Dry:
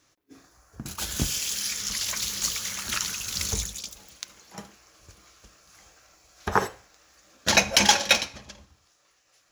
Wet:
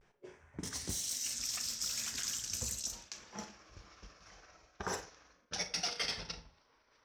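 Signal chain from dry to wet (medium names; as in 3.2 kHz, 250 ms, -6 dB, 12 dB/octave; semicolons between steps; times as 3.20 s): pitch bend over the whole clip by -9 st starting unshifted; peaking EQ 4.2 kHz +11 dB 0.39 oct; reverse; compression 6:1, threshold -36 dBFS, peak gain reduction 24.5 dB; reverse; vibrato 0.33 Hz 55 cents; level-controlled noise filter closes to 1.3 kHz, open at -33.5 dBFS; on a send at -9.5 dB: reverberation RT60 0.50 s, pre-delay 5 ms; on the sum: speed mistake 33 rpm record played at 45 rpm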